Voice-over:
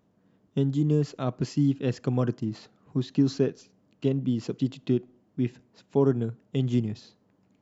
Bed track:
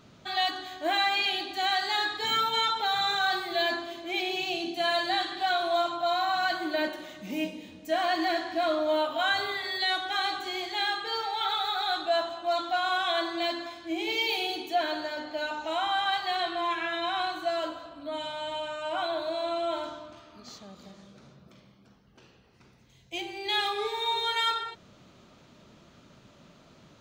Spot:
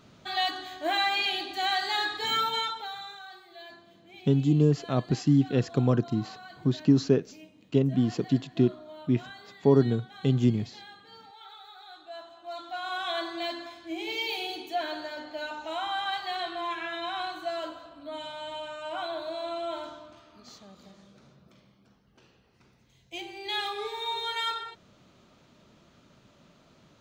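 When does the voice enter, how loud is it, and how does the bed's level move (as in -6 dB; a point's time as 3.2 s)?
3.70 s, +2.0 dB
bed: 2.49 s -0.5 dB
3.26 s -19.5 dB
11.92 s -19.5 dB
13.1 s -3.5 dB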